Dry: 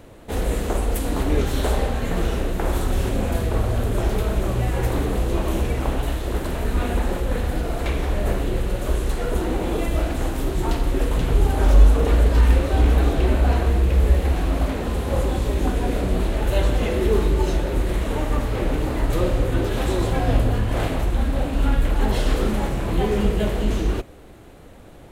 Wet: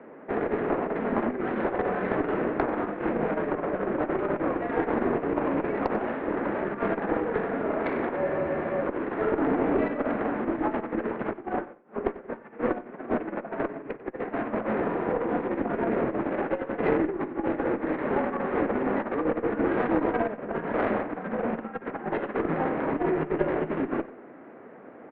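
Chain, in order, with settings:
compressor whose output falls as the input rises −21 dBFS, ratio −0.5
single-sideband voice off tune −50 Hz 280–2,100 Hz
harmonic generator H 2 −14 dB, 6 −24 dB, 8 −44 dB, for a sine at −8.5 dBFS
on a send: repeating echo 93 ms, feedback 21%, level −18 dB
on the sum: frozen spectrum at 0:08.19, 0.62 s

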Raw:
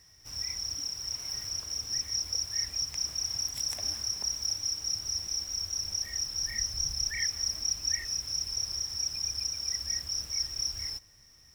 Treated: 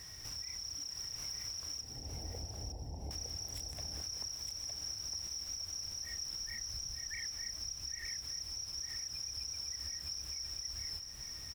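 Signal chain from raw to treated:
0:01.81–0:03.11: elliptic low-pass filter 830 Hz, stop band 40 dB
downward compressor 4 to 1, threshold −49 dBFS, peak gain reduction 20 dB
brickwall limiter −43.5 dBFS, peak gain reduction 9 dB
on a send: repeating echo 910 ms, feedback 29%, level −5 dB
on the sum: level +9 dB

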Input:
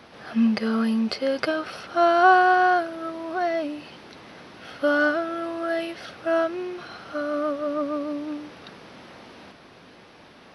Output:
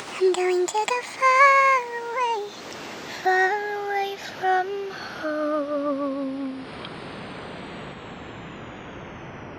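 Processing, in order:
gliding playback speed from 168% → 52%
upward compression, threshold −28 dBFS
level +1 dB

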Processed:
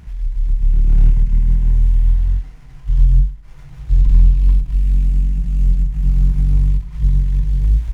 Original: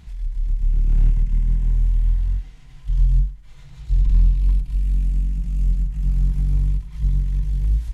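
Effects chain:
windowed peak hold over 9 samples
level +5.5 dB

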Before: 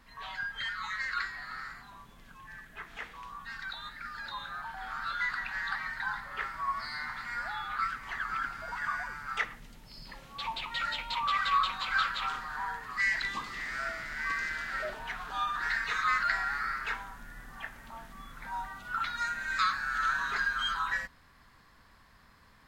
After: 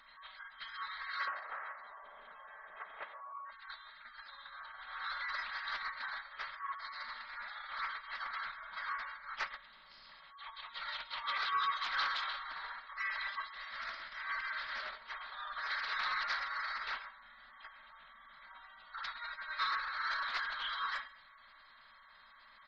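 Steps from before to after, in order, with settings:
compressor on every frequency bin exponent 0.4
repeating echo 131 ms, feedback 26%, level −7 dB
soft clipping −24.5 dBFS, distortion −11 dB
noise gate −26 dBFS, range −32 dB
0:01.27–0:03.51: parametric band 610 Hz +14 dB 1.8 octaves
tuned comb filter 560 Hz, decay 0.2 s, harmonics all, mix 60%
gate on every frequency bin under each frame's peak −20 dB strong
parametric band 5,000 Hz +10.5 dB 1.8 octaves
mains-hum notches 50/100/150/200 Hz
highs frequency-modulated by the lows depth 0.28 ms
level +11.5 dB

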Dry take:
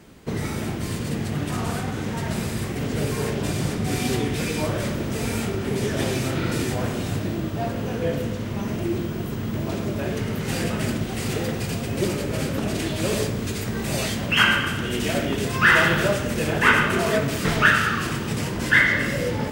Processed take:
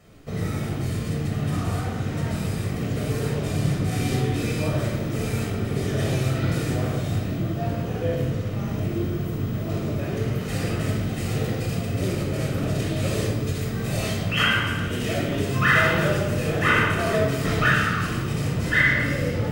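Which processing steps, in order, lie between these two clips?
rectangular room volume 3,400 cubic metres, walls furnished, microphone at 6.3 metres
level −8 dB

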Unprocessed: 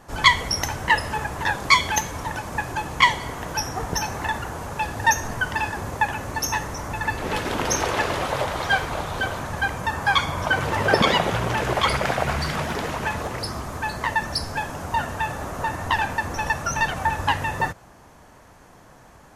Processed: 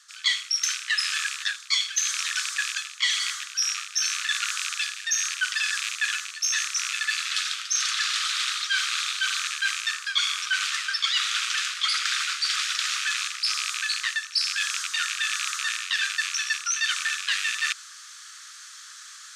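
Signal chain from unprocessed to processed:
loose part that buzzes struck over −33 dBFS, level −21 dBFS
Butterworth high-pass 1,200 Hz 96 dB per octave
flat-topped bell 5,500 Hz +13.5 dB
reversed playback
downward compressor 6 to 1, threshold −30 dBFS, peak gain reduction 24.5 dB
reversed playback
high-shelf EQ 7,800 Hz −6.5 dB
level +7.5 dB

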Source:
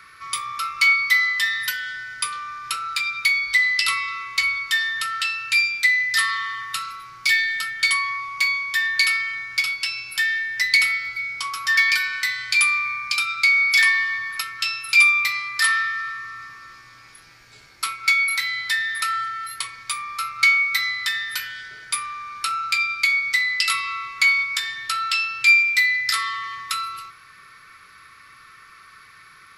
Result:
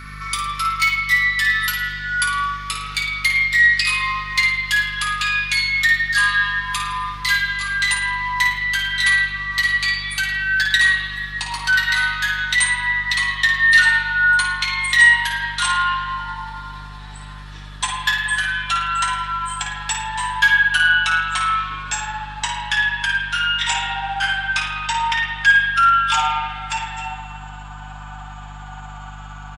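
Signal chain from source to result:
pitch glide at a constant tempo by −7.5 semitones starting unshifted
comb filter 6.7 ms, depth 49%
in parallel at +1 dB: downward compressor, threshold −33 dBFS, peak gain reduction 22 dB
on the sum: mains hum 50 Hz, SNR 16 dB
on a send: flutter between parallel walls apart 9.3 metres, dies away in 0.38 s
on the sum: spring reverb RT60 1.6 s, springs 46/59 ms, chirp 55 ms, DRR 1.5 dB
level −1 dB

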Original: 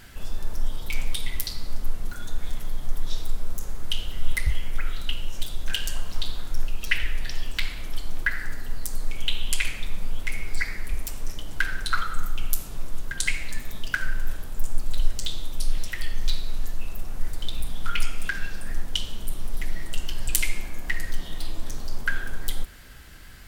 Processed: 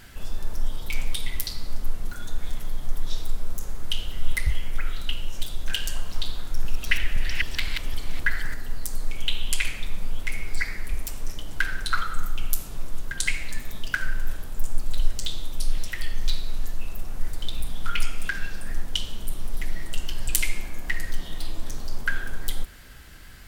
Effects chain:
0:06.39–0:08.54: delay that plays each chunk backwards 258 ms, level −3 dB

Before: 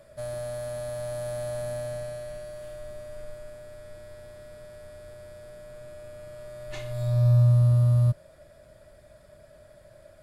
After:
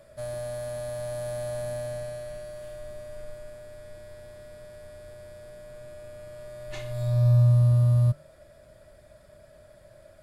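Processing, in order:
hum removal 147.4 Hz, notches 13

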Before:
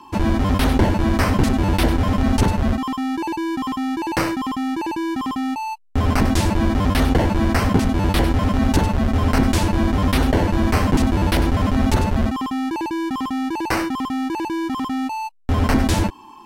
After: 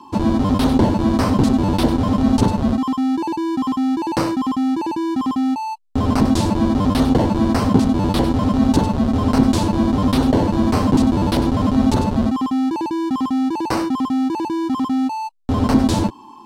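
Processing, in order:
octave-band graphic EQ 125/250/500/1,000/2,000/4,000/8,000 Hz +8/+10/+6/+8/−4/+8/+5 dB
level −7.5 dB

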